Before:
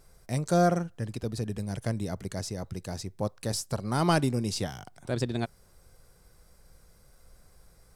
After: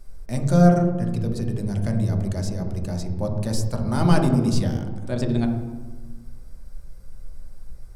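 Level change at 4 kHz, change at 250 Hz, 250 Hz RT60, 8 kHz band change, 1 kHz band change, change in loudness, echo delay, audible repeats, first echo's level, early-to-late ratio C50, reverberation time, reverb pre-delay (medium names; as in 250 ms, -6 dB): 0.0 dB, +9.5 dB, 1.7 s, 0.0 dB, +2.5 dB, +7.5 dB, no echo, no echo, no echo, 6.0 dB, 1.3 s, 3 ms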